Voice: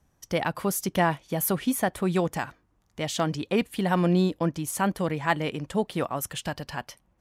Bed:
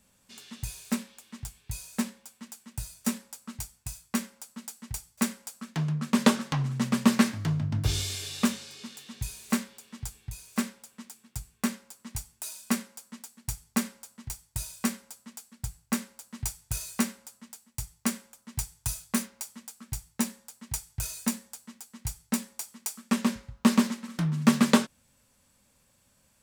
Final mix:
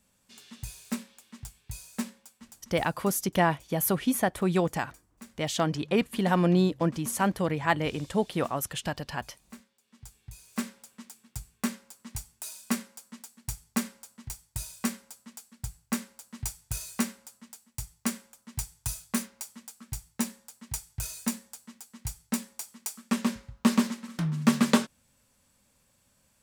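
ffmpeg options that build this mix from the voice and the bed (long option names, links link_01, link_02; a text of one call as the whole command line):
ffmpeg -i stem1.wav -i stem2.wav -filter_complex "[0:a]adelay=2400,volume=-0.5dB[link_01];[1:a]volume=16dB,afade=type=out:start_time=2.16:duration=0.99:silence=0.133352,afade=type=in:start_time=9.79:duration=1.03:silence=0.105925[link_02];[link_01][link_02]amix=inputs=2:normalize=0" out.wav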